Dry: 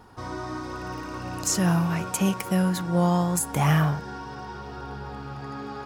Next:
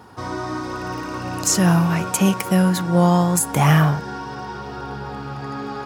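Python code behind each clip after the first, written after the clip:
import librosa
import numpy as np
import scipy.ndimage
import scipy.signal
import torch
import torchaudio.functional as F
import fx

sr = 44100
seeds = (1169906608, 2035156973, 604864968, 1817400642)

y = scipy.signal.sosfilt(scipy.signal.butter(2, 85.0, 'highpass', fs=sr, output='sos'), x)
y = y * 10.0 ** (6.5 / 20.0)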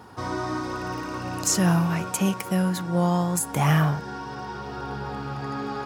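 y = fx.rider(x, sr, range_db=4, speed_s=2.0)
y = y * 10.0 ** (-5.5 / 20.0)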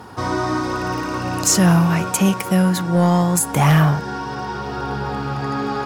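y = fx.fold_sine(x, sr, drive_db=4, ceiling_db=-7.5)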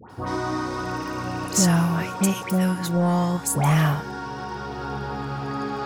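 y = fx.dispersion(x, sr, late='highs', ms=99.0, hz=1400.0)
y = y * 10.0 ** (-5.5 / 20.0)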